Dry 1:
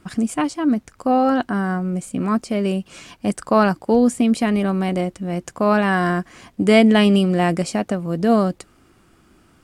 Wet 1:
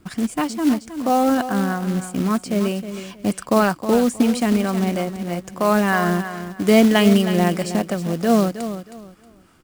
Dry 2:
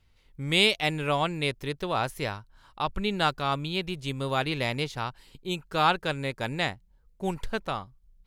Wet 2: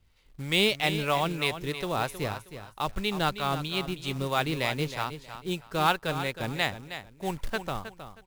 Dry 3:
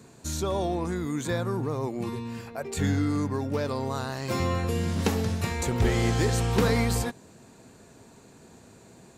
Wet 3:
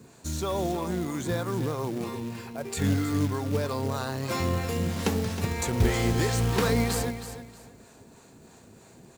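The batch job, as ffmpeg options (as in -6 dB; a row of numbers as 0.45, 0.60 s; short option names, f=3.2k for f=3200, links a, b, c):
-filter_complex "[0:a]aecho=1:1:316|632|948:0.282|0.0705|0.0176,acrossover=split=540[a][b];[a]aeval=exprs='val(0)*(1-0.5/2+0.5/2*cos(2*PI*3.1*n/s))':c=same[c];[b]aeval=exprs='val(0)*(1-0.5/2-0.5/2*cos(2*PI*3.1*n/s))':c=same[d];[c][d]amix=inputs=2:normalize=0,acrusher=bits=4:mode=log:mix=0:aa=0.000001,volume=1.5dB"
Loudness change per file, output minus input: -0.5, -1.0, -0.5 LU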